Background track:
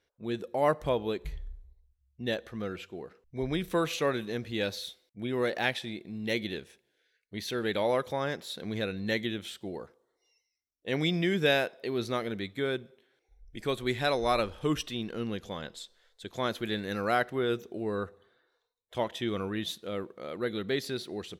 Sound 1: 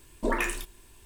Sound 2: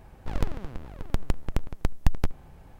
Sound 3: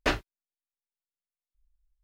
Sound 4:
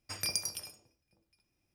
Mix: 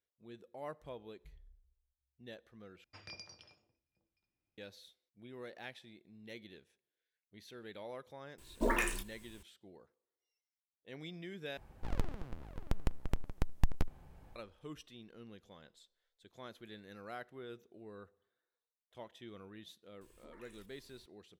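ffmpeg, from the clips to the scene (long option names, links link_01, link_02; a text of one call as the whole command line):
ffmpeg -i bed.wav -i cue0.wav -i cue1.wav -i cue2.wav -i cue3.wav -filter_complex "[1:a]asplit=2[link_01][link_02];[0:a]volume=-19dB[link_03];[4:a]lowpass=frequency=4400:width=0.5412,lowpass=frequency=4400:width=1.3066[link_04];[link_01]acrusher=bits=7:mode=log:mix=0:aa=0.000001[link_05];[link_02]acompressor=threshold=-43dB:ratio=6:attack=0.71:release=163:knee=1:detection=peak[link_06];[link_03]asplit=3[link_07][link_08][link_09];[link_07]atrim=end=2.844[link_10];[link_04]atrim=end=1.74,asetpts=PTS-STARTPTS,volume=-10.5dB[link_11];[link_08]atrim=start=4.576:end=11.574[link_12];[2:a]atrim=end=2.79,asetpts=PTS-STARTPTS,volume=-8dB[link_13];[link_09]atrim=start=14.356[link_14];[link_05]atrim=end=1.05,asetpts=PTS-STARTPTS,volume=-4.5dB,afade=type=in:duration=0.004:curve=hsin,afade=type=out:start_time=1.046:duration=0.004:curve=hsin,adelay=8380[link_15];[link_06]atrim=end=1.05,asetpts=PTS-STARTPTS,volume=-12.5dB,afade=type=in:duration=0.004:curve=hsin,afade=type=out:start_time=1.046:duration=0.004:curve=hsin,adelay=20010[link_16];[link_10][link_11]acrossfade=duration=0.004:curve1=hsin:curve2=hsin[link_17];[link_17][link_12]acrossfade=duration=0.004:curve1=hsin:curve2=hsin[link_18];[link_18][link_13]acrossfade=duration=0.004:curve1=hsin:curve2=hsin[link_19];[link_19][link_14]acrossfade=duration=0.004:curve1=hsin:curve2=hsin[link_20];[link_20][link_15][link_16]amix=inputs=3:normalize=0" out.wav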